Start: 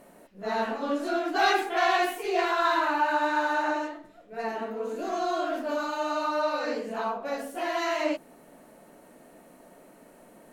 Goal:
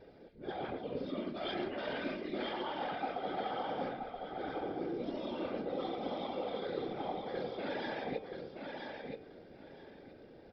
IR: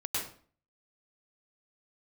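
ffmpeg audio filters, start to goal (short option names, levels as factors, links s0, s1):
-filter_complex "[0:a]bandreject=f=3000:w=18,asetrate=37084,aresample=44100,atempo=1.18921,equalizer=f=1100:t=o:w=0.72:g=-12.5,aecho=1:1:2.5:0.44,areverse,acompressor=threshold=0.02:ratio=12,areverse,afftfilt=real='hypot(re,im)*cos(2*PI*random(0))':imag='hypot(re,im)*sin(2*PI*random(1))':win_size=512:overlap=0.75,bandreject=f=111.5:t=h:w=4,bandreject=f=223:t=h:w=4,bandreject=f=334.5:t=h:w=4,bandreject=f=446:t=h:w=4,bandreject=f=557.5:t=h:w=4,bandreject=f=669:t=h:w=4,bandreject=f=780.5:t=h:w=4,bandreject=f=892:t=h:w=4,bandreject=f=1003.5:t=h:w=4,bandreject=f=1115:t=h:w=4,bandreject=f=1226.5:t=h:w=4,bandreject=f=1338:t=h:w=4,bandreject=f=1449.5:t=h:w=4,bandreject=f=1561:t=h:w=4,bandreject=f=1672.5:t=h:w=4,bandreject=f=1784:t=h:w=4,bandreject=f=1895.5:t=h:w=4,bandreject=f=2007:t=h:w=4,bandreject=f=2118.5:t=h:w=4,bandreject=f=2230:t=h:w=4,bandreject=f=2341.5:t=h:w=4,bandreject=f=2453:t=h:w=4,bandreject=f=2564.5:t=h:w=4,bandreject=f=2676:t=h:w=4,bandreject=f=2787.5:t=h:w=4,bandreject=f=2899:t=h:w=4,bandreject=f=3010.5:t=h:w=4,bandreject=f=3122:t=h:w=4,bandreject=f=3233.5:t=h:w=4,asplit=2[s0][s1];[s1]aecho=0:1:977|1954|2931:0.562|0.112|0.0225[s2];[s0][s2]amix=inputs=2:normalize=0,aresample=11025,aresample=44100,volume=1.68"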